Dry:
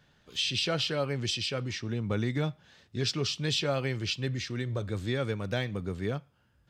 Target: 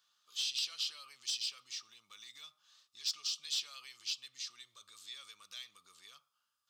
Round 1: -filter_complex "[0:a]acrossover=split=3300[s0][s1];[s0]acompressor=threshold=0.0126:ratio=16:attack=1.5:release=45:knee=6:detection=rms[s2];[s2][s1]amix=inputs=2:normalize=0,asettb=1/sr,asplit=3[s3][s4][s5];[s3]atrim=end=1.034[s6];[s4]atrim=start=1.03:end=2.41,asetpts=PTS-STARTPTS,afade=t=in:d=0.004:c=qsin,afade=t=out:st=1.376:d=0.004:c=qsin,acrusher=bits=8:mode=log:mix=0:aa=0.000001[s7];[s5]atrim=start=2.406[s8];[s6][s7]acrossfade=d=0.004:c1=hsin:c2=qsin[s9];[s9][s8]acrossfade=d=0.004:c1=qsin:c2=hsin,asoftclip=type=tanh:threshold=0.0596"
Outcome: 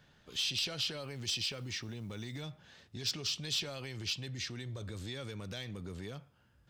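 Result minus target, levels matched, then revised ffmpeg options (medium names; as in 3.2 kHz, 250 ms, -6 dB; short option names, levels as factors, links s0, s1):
1 kHz band +5.0 dB
-filter_complex "[0:a]acrossover=split=3300[s0][s1];[s0]acompressor=threshold=0.0126:ratio=16:attack=1.5:release=45:knee=6:detection=rms,bandpass=f=1200:t=q:w=12:csg=0[s2];[s2][s1]amix=inputs=2:normalize=0,asettb=1/sr,asplit=3[s3][s4][s5];[s3]atrim=end=1.034[s6];[s4]atrim=start=1.03:end=2.41,asetpts=PTS-STARTPTS,afade=t=in:d=0.004:c=qsin,afade=t=out:st=1.376:d=0.004:c=qsin,acrusher=bits=8:mode=log:mix=0:aa=0.000001[s7];[s5]atrim=start=2.406[s8];[s6][s7]acrossfade=d=0.004:c1=hsin:c2=qsin[s9];[s9][s8]acrossfade=d=0.004:c1=qsin:c2=hsin,asoftclip=type=tanh:threshold=0.0596"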